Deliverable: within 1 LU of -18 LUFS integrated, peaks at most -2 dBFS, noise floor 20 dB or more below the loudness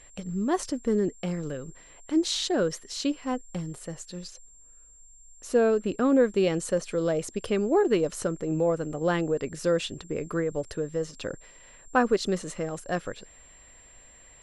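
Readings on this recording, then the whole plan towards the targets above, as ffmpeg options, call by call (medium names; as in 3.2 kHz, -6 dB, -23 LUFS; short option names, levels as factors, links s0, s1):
steady tone 7.4 kHz; tone level -52 dBFS; loudness -27.5 LUFS; peak level -9.5 dBFS; loudness target -18.0 LUFS
-> -af "bandreject=f=7400:w=30"
-af "volume=2.99,alimiter=limit=0.794:level=0:latency=1"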